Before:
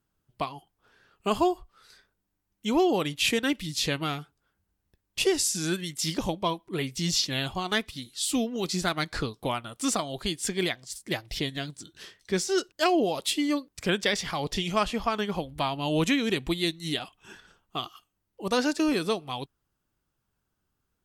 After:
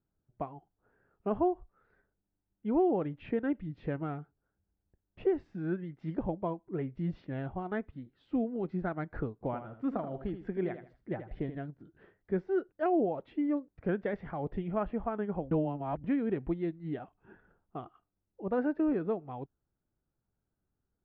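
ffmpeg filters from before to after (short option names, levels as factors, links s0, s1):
-filter_complex "[0:a]asettb=1/sr,asplit=3[s0][s1][s2];[s0]atrim=end=9.334[s3];[s1]atrim=start=9.33:end=11.55,asetpts=PTS-STARTPTS,afade=t=in:d=0.004:c=qsin,afade=t=out:st=2.216:d=0.004:c=qsin,aecho=1:1:79|158|237:0.316|0.0854|0.0231,atrim=end_sample=97902[s4];[s2]atrim=start=11.546[s5];[s3][s4]acrossfade=d=0.004:c1=hsin:c2=qsin[s6];[s6][s5]acrossfade=d=0.004:c1=qsin:c2=hsin,asplit=3[s7][s8][s9];[s7]atrim=end=15.512[s10];[s8]atrim=start=15.508:end=16.042,asetpts=PTS-STARTPTS,areverse[s11];[s9]atrim=start=16.038[s12];[s10][s11]acrossfade=d=0.004:c1=hsin:c2=hsin[s13];[s13][s12]acrossfade=d=0.004:c1=hsin:c2=hsin,lowpass=f=1400:w=0.5412,lowpass=f=1400:w=1.3066,equalizer=f=1100:t=o:w=0.58:g=-9,volume=0.668"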